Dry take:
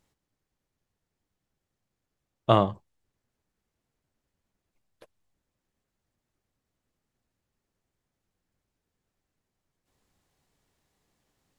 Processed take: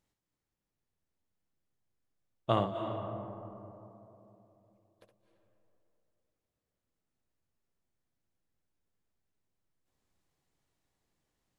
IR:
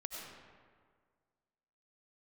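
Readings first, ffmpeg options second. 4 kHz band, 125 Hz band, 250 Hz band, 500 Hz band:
-7.5 dB, -7.0 dB, -6.5 dB, -6.5 dB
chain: -filter_complex "[0:a]asplit=2[a][b];[1:a]atrim=start_sample=2205,asetrate=22491,aresample=44100,adelay=67[c];[b][c]afir=irnorm=-1:irlink=0,volume=-7.5dB[d];[a][d]amix=inputs=2:normalize=0,volume=-8.5dB"

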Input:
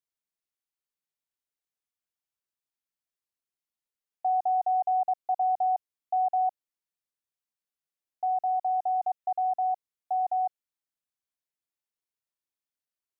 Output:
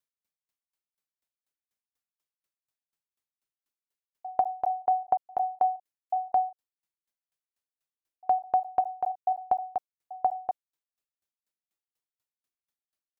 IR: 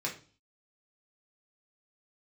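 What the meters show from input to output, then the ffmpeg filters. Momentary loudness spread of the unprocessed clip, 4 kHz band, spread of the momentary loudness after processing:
7 LU, n/a, 10 LU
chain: -filter_complex "[0:a]asplit=2[a][b];[b]adelay=36,volume=-2.5dB[c];[a][c]amix=inputs=2:normalize=0,aeval=exprs='val(0)*pow(10,-36*if(lt(mod(4.1*n/s,1),2*abs(4.1)/1000),1-mod(4.1*n/s,1)/(2*abs(4.1)/1000),(mod(4.1*n/s,1)-2*abs(4.1)/1000)/(1-2*abs(4.1)/1000))/20)':c=same,volume=6dB"

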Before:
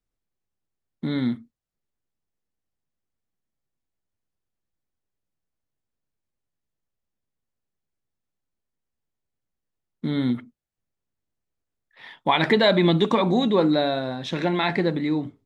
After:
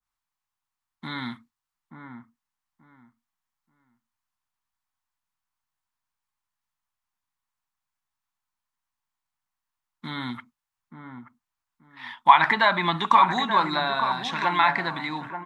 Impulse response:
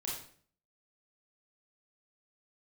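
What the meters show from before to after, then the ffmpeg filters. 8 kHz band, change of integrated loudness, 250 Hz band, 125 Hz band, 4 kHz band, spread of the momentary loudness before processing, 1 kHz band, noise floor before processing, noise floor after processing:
n/a, +0.5 dB, -11.0 dB, -9.5 dB, -1.5 dB, 11 LU, +8.0 dB, -84 dBFS, under -85 dBFS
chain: -filter_complex "[0:a]lowshelf=f=690:t=q:w=3:g=-12,acrossover=split=1900[a][b];[a]aecho=1:1:881|1762|2643:0.376|0.0789|0.0166[c];[b]acompressor=threshold=-39dB:ratio=5[d];[c][d]amix=inputs=2:normalize=0,adynamicequalizer=threshold=0.0178:dfrequency=1600:dqfactor=0.7:tfrequency=1600:tqfactor=0.7:attack=5:release=100:ratio=0.375:range=2.5:mode=boostabove:tftype=highshelf,volume=2.5dB"

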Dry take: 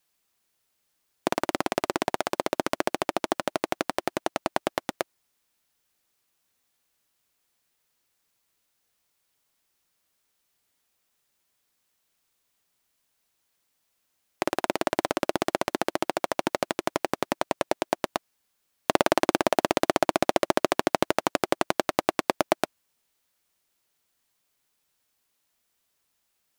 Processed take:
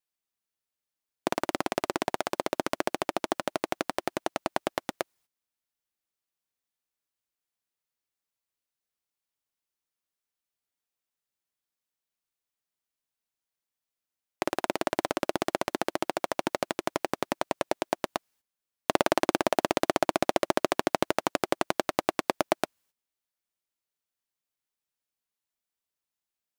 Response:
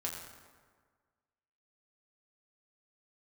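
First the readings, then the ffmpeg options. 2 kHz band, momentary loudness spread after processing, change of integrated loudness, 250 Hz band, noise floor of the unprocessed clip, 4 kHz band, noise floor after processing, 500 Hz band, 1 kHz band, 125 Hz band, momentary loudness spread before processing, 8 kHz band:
-2.5 dB, 7 LU, -2.5 dB, -2.5 dB, -75 dBFS, -2.5 dB, under -85 dBFS, -2.5 dB, -2.5 dB, -2.5 dB, 7 LU, -2.5 dB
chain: -af "agate=range=-13dB:threshold=-60dB:ratio=16:detection=peak,volume=-2.5dB"

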